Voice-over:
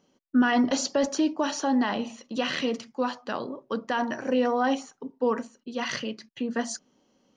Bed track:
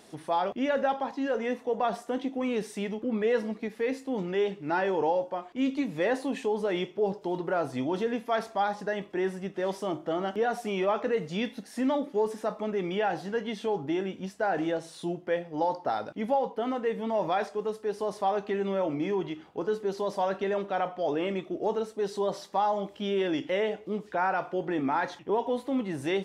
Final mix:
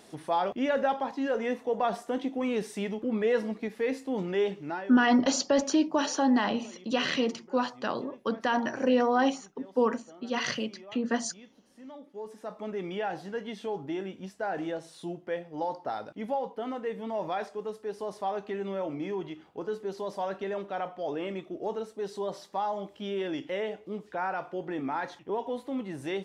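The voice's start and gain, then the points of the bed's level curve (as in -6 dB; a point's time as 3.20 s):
4.55 s, 0.0 dB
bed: 4.60 s 0 dB
5.05 s -21.5 dB
11.78 s -21.5 dB
12.68 s -4.5 dB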